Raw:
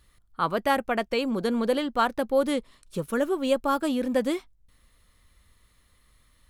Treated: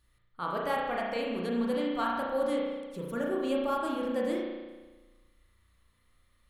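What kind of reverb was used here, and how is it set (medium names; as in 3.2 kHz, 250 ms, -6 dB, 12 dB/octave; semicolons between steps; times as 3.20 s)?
spring tank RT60 1.3 s, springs 34 ms, chirp 45 ms, DRR -3 dB; trim -10.5 dB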